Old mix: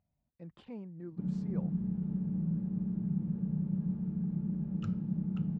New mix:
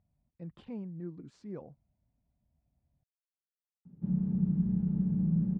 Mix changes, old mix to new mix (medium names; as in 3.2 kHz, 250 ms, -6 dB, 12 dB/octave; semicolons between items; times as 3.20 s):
background: entry +2.85 s; master: add bass shelf 240 Hz +7 dB